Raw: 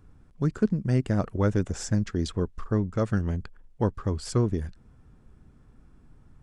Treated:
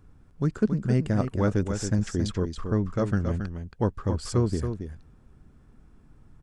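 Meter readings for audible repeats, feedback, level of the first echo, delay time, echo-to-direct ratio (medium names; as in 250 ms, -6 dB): 1, no regular repeats, -7.5 dB, 275 ms, -7.5 dB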